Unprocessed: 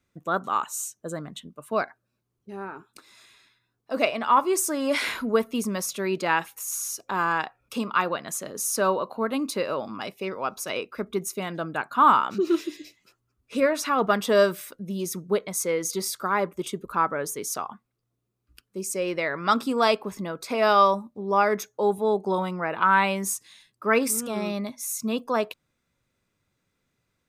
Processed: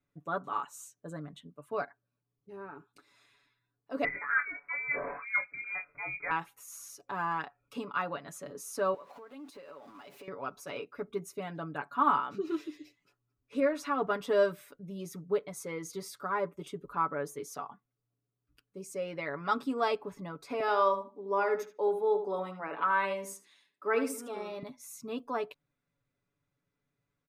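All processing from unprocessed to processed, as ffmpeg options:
ffmpeg -i in.wav -filter_complex "[0:a]asettb=1/sr,asplit=3[link_01][link_02][link_03];[link_01]atrim=end=4.044[link_04];[link_02]atrim=start=4.04:end=6.31,asetpts=PTS-STARTPTS,afade=type=in:duration=0.004:curve=qsin,afade=type=out:start_time=2.266:duration=0.004:curve=qsin,lowpass=frequency=2200:width_type=q:width=0.5098,lowpass=frequency=2200:width_type=q:width=0.6013,lowpass=frequency=2200:width_type=q:width=0.9,lowpass=frequency=2200:width_type=q:width=2.563,afreqshift=-2600,asplit=2[link_05][link_06];[link_06]adelay=22,volume=-6dB[link_07];[link_05][link_07]amix=inputs=2:normalize=0,atrim=end_sample=100107[link_08];[link_03]atrim=start=6.306[link_09];[link_04][link_08]acrossfade=duration=0.004:curve1=hsin:curve2=qsin[link_10];[link_10][link_09]acrossfade=duration=0.004:curve1=qsin:curve2=hsin,asettb=1/sr,asplit=3[link_11][link_12][link_13];[link_11]atrim=end=8.944[link_14];[link_12]atrim=start=8.94:end=10.28,asetpts=PTS-STARTPTS,afade=type=in:duration=0.004:curve=qsin,afade=type=out:start_time=1.336:duration=0.004:curve=qsin,aeval=exprs='val(0)+0.5*0.0141*sgn(val(0))':channel_layout=same,highpass=frequency=400:poles=1,acompressor=threshold=-37dB:ratio=12:attack=3.2:release=140:knee=1:detection=peak[link_15];[link_13]atrim=start=10.276[link_16];[link_14][link_15]acrossfade=duration=0.004:curve1=hsin:curve2=qsin[link_17];[link_17][link_16]acrossfade=duration=0.004:curve1=qsin:curve2=hsin,asettb=1/sr,asplit=3[link_18][link_19][link_20];[link_18]atrim=end=20.604[link_21];[link_19]atrim=start=20.6:end=24.63,asetpts=PTS-STARTPTS,afade=type=in:duration=0.004:curve=qsin,afade=type=out:start_time=4.026:duration=0.004:curve=qsin,highpass=frequency=230:width=0.5412,highpass=frequency=230:width=1.3066,asplit=2[link_22][link_23];[link_23]adelay=76,lowpass=frequency=2600:poles=1,volume=-8.5dB,asplit=2[link_24][link_25];[link_25]adelay=76,lowpass=frequency=2600:poles=1,volume=0.2,asplit=2[link_26][link_27];[link_27]adelay=76,lowpass=frequency=2600:poles=1,volume=0.2[link_28];[link_22][link_24][link_26][link_28]amix=inputs=4:normalize=0,atrim=end_sample=177723[link_29];[link_20]atrim=start=24.626[link_30];[link_21][link_29]acrossfade=duration=0.004:curve1=hsin:curve2=qsin[link_31];[link_31][link_30]acrossfade=duration=0.004:curve1=qsin:curve2=hsin,highshelf=frequency=3100:gain=-10.5,aecho=1:1:7:0.74,volume=-9dB" out.wav

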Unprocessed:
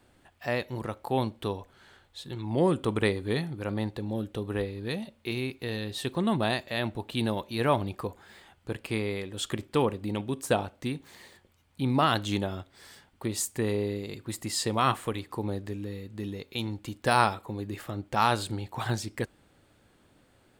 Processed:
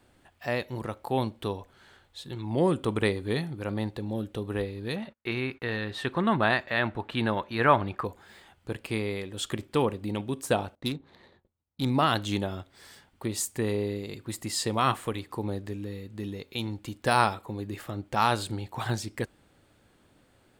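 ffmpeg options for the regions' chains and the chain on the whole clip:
ffmpeg -i in.wav -filter_complex "[0:a]asettb=1/sr,asplit=3[link_01][link_02][link_03];[link_01]atrim=end=4.964[link_04];[link_02]atrim=start=4.96:end=8.05,asetpts=PTS-STARTPTS,afade=type=in:duration=0.004:curve=qsin,afade=type=out:start_time=3.086:duration=0.004:curve=qsin,agate=range=-32dB:threshold=-53dB:ratio=16:release=100:detection=peak,lowpass=frequency=3000:poles=1,equalizer=frequency=1500:width=0.96:gain=11[link_05];[link_03]atrim=start=8.046[link_06];[link_04][link_05]acrossfade=duration=0.004:curve1=hsin:curve2=qsin[link_07];[link_07][link_06]acrossfade=duration=0.004:curve1=qsin:curve2=hsin,asettb=1/sr,asplit=3[link_08][link_09][link_10];[link_08]atrim=end=10.754[link_11];[link_09]atrim=start=10.75:end=11.9,asetpts=PTS-STARTPTS,afade=type=in:duration=0.004:curve=qsin,afade=type=out:start_time=1.146:duration=0.004:curve=qsin,agate=range=-33dB:threshold=-56dB:ratio=3:release=100:detection=peak,equalizer=frequency=3900:width_type=o:width=0.38:gain=14.5,adynamicsmooth=sensitivity=5:basefreq=1100[link_12];[link_10]atrim=start=11.896[link_13];[link_11][link_12]acrossfade=duration=0.004:curve1=hsin:curve2=qsin[link_14];[link_14][link_13]acrossfade=duration=0.004:curve1=qsin:curve2=hsin" out.wav

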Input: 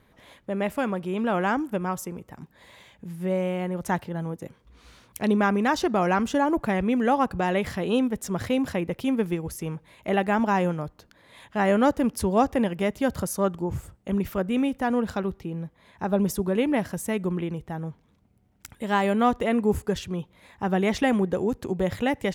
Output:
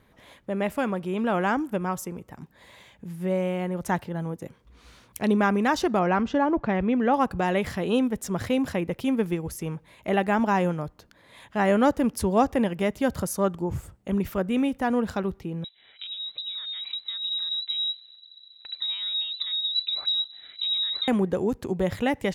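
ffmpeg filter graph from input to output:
ffmpeg -i in.wav -filter_complex "[0:a]asettb=1/sr,asplit=3[link_01][link_02][link_03];[link_01]atrim=end=5.994[link_04];[link_02]atrim=start=5.99:end=7.14,asetpts=PTS-STARTPTS,afade=type=in:duration=0.004:curve=qsin,afade=type=out:start_time=1.146:duration=0.004:curve=qsin,lowpass=frequency=5800:width=0.5412,lowpass=frequency=5800:width=1.3066,highshelf=frequency=4100:gain=-9.5[link_05];[link_03]atrim=start=7.136[link_06];[link_04][link_05]acrossfade=duration=0.004:curve1=hsin:curve2=qsin[link_07];[link_07][link_06]acrossfade=duration=0.004:curve1=qsin:curve2=hsin,asettb=1/sr,asplit=3[link_08][link_09][link_10];[link_08]atrim=end=15.644[link_11];[link_09]atrim=start=15.64:end=21.08,asetpts=PTS-STARTPTS,afade=type=in:duration=0.004:curve=qsin,afade=type=out:start_time=5.436:duration=0.004:curve=qsin,acompressor=threshold=-35dB:ratio=10:attack=3.2:release=140:knee=1:detection=peak,asubboost=boost=9:cutoff=250,lowpass=frequency=3400:width_type=q:width=0.5098,lowpass=frequency=3400:width_type=q:width=0.6013,lowpass=frequency=3400:width_type=q:width=0.9,lowpass=frequency=3400:width_type=q:width=2.563,afreqshift=-4000[link_12];[link_10]atrim=start=21.076[link_13];[link_11][link_12]acrossfade=duration=0.004:curve1=hsin:curve2=qsin[link_14];[link_14][link_13]acrossfade=duration=0.004:curve1=qsin:curve2=hsin" out.wav

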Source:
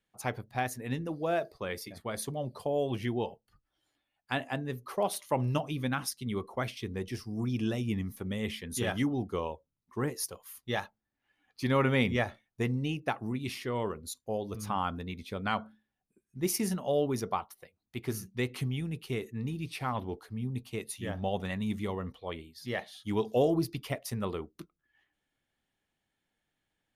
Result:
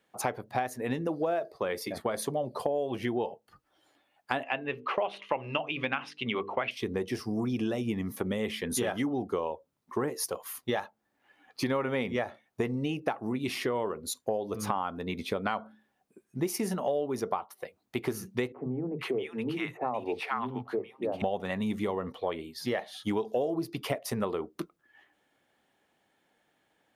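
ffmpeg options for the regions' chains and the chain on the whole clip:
ffmpeg -i in.wav -filter_complex "[0:a]asettb=1/sr,asplit=3[link_01][link_02][link_03];[link_01]atrim=end=4.434[link_04];[link_02]atrim=start=4.43:end=6.71,asetpts=PTS-STARTPTS,afade=type=in:duration=0.004:curve=qsin,afade=type=out:start_time=2.276:duration=0.004:curve=qsin,lowpass=frequency=2700:width_type=q:width=4.8,lowshelf=frequency=370:gain=-6.5,bandreject=frequency=50:width_type=h:width=6,bandreject=frequency=100:width_type=h:width=6,bandreject=frequency=150:width_type=h:width=6,bandreject=frequency=200:width_type=h:width=6,bandreject=frequency=250:width_type=h:width=6,bandreject=frequency=300:width_type=h:width=6,bandreject=frequency=350:width_type=h:width=6,bandreject=frequency=400:width_type=h:width=6,bandreject=frequency=450:width_type=h:width=6[link_05];[link_03]atrim=start=6.706[link_06];[link_04][link_05]acrossfade=duration=0.004:curve1=hsin:curve2=qsin[link_07];[link_07][link_06]acrossfade=duration=0.004:curve1=qsin:curve2=hsin,asettb=1/sr,asplit=3[link_08][link_09][link_10];[link_08]atrim=end=18.524[link_11];[link_09]atrim=start=18.52:end=21.22,asetpts=PTS-STARTPTS,afade=type=in:duration=0.004:curve=qsin,afade=type=out:start_time=2.696:duration=0.004:curve=qsin,highpass=100,bass=frequency=250:gain=-7,treble=frequency=4000:gain=-14,acrossover=split=180|940[link_12][link_13][link_14];[link_12]adelay=40[link_15];[link_14]adelay=470[link_16];[link_15][link_13][link_16]amix=inputs=3:normalize=0,atrim=end_sample=119070[link_17];[link_10]atrim=start=21.216[link_18];[link_11][link_17]acrossfade=duration=0.004:curve1=hsin:curve2=qsin[link_19];[link_19][link_18]acrossfade=duration=0.004:curve1=qsin:curve2=hsin,highpass=frequency=170:poles=1,equalizer=frequency=610:width_type=o:width=2.9:gain=9,acompressor=threshold=-35dB:ratio=6,volume=7dB" out.wav

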